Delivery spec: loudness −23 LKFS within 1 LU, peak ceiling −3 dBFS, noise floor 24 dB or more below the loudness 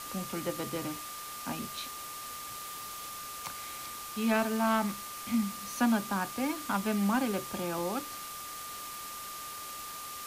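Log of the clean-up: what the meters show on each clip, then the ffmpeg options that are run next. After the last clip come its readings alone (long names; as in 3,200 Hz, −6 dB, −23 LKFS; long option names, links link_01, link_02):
interfering tone 1,200 Hz; level of the tone −43 dBFS; background noise floor −42 dBFS; target noise floor −58 dBFS; integrated loudness −34.0 LKFS; sample peak −17.5 dBFS; target loudness −23.0 LKFS
→ -af "bandreject=frequency=1200:width=30"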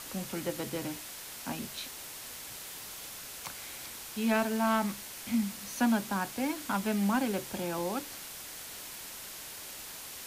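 interfering tone none found; background noise floor −45 dBFS; target noise floor −59 dBFS
→ -af "afftdn=noise_reduction=14:noise_floor=-45"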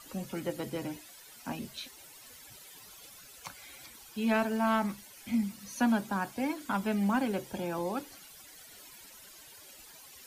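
background noise floor −53 dBFS; target noise floor −57 dBFS
→ -af "afftdn=noise_reduction=6:noise_floor=-53"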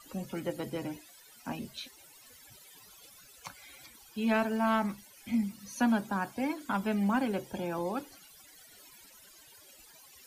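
background noise floor −57 dBFS; integrated loudness −33.0 LKFS; sample peak −18.5 dBFS; target loudness −23.0 LKFS
→ -af "volume=10dB"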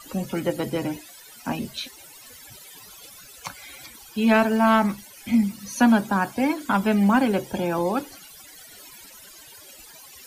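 integrated loudness −23.0 LKFS; sample peak −8.5 dBFS; background noise floor −47 dBFS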